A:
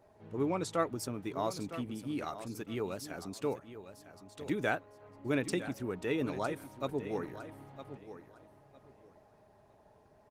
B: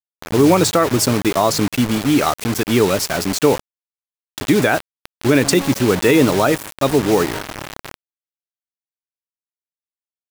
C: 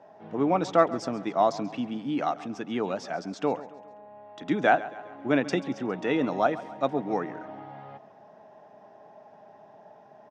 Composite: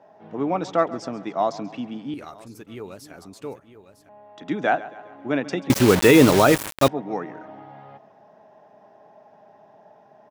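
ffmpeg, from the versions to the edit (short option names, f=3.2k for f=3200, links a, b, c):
-filter_complex "[2:a]asplit=3[a][b][c];[a]atrim=end=2.142[d];[0:a]atrim=start=2.138:end=4.092[e];[b]atrim=start=4.088:end=5.702[f];[1:a]atrim=start=5.698:end=6.882[g];[c]atrim=start=6.878[h];[d][e]acrossfade=d=0.004:c1=hsin:c2=hsin[i];[i][f]acrossfade=d=0.004:c1=hsin:c2=hsin[j];[j][g]acrossfade=d=0.004:c1=hsin:c2=hsin[k];[k][h]acrossfade=d=0.004:c1=hsin:c2=hsin"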